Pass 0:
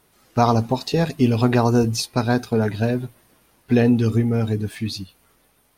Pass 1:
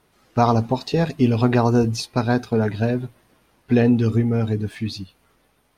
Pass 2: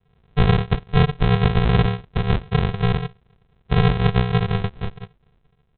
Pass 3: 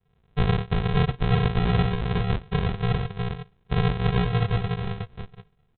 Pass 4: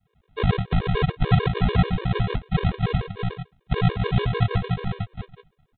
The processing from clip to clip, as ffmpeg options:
-af "highshelf=f=7400:g=-11.5"
-af "adynamicsmooth=sensitivity=1:basefreq=2000,aecho=1:1:6.4:0.87,aresample=8000,acrusher=samples=27:mix=1:aa=0.000001,aresample=44100"
-af "aecho=1:1:363:0.668,volume=0.501"
-af "afftfilt=real='re*gt(sin(2*PI*6.8*pts/sr)*(1-2*mod(floor(b*sr/1024/310),2)),0)':imag='im*gt(sin(2*PI*6.8*pts/sr)*(1-2*mod(floor(b*sr/1024/310),2)),0)':win_size=1024:overlap=0.75,volume=1.68"

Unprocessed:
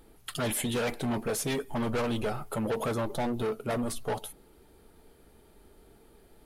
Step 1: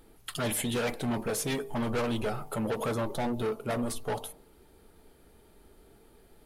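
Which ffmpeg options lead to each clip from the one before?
-af "bandreject=f=50.71:t=h:w=4,bandreject=f=101.42:t=h:w=4,bandreject=f=152.13:t=h:w=4,bandreject=f=202.84:t=h:w=4,bandreject=f=253.55:t=h:w=4,bandreject=f=304.26:t=h:w=4,bandreject=f=354.97:t=h:w=4,bandreject=f=405.68:t=h:w=4,bandreject=f=456.39:t=h:w=4,bandreject=f=507.1:t=h:w=4,bandreject=f=557.81:t=h:w=4,bandreject=f=608.52:t=h:w=4,bandreject=f=659.23:t=h:w=4,bandreject=f=709.94:t=h:w=4,bandreject=f=760.65:t=h:w=4,bandreject=f=811.36:t=h:w=4,bandreject=f=862.07:t=h:w=4,bandreject=f=912.78:t=h:w=4,bandreject=f=963.49:t=h:w=4,bandreject=f=1014.2:t=h:w=4,bandreject=f=1064.91:t=h:w=4,bandreject=f=1115.62:t=h:w=4,bandreject=f=1166.33:t=h:w=4"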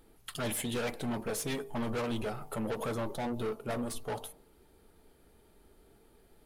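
-af "aeval=exprs='0.0891*(cos(1*acos(clip(val(0)/0.0891,-1,1)))-cos(1*PI/2))+0.00891*(cos(2*acos(clip(val(0)/0.0891,-1,1)))-cos(2*PI/2))+0.01*(cos(4*acos(clip(val(0)/0.0891,-1,1)))-cos(4*PI/2))':c=same,volume=0.631"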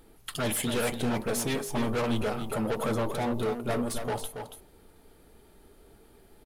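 -af "aecho=1:1:280:0.422,volume=1.78"

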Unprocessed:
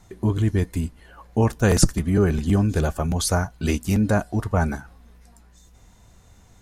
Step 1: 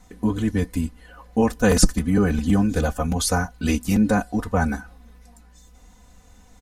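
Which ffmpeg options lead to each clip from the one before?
-af "aecho=1:1:4:0.87,volume=0.891"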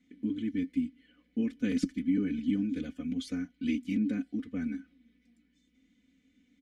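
-filter_complex "[0:a]asplit=3[s0][s1][s2];[s0]bandpass=f=270:t=q:w=8,volume=1[s3];[s1]bandpass=f=2290:t=q:w=8,volume=0.501[s4];[s2]bandpass=f=3010:t=q:w=8,volume=0.355[s5];[s3][s4][s5]amix=inputs=3:normalize=0"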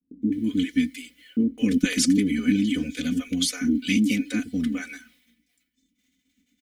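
-filter_complex "[0:a]agate=range=0.0224:threshold=0.00141:ratio=3:detection=peak,crystalizer=i=5.5:c=0,acrossover=split=500[s0][s1];[s1]adelay=210[s2];[s0][s2]amix=inputs=2:normalize=0,volume=2.66"

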